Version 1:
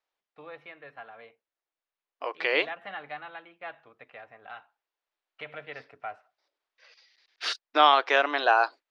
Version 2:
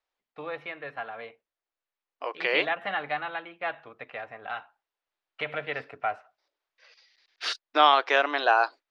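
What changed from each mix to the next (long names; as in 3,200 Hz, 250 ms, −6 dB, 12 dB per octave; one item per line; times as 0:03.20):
first voice +8.5 dB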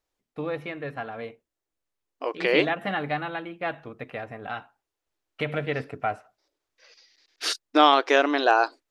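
master: remove three-way crossover with the lows and the highs turned down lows −15 dB, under 550 Hz, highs −20 dB, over 4,900 Hz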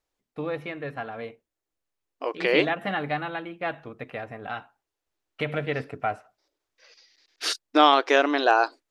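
nothing changed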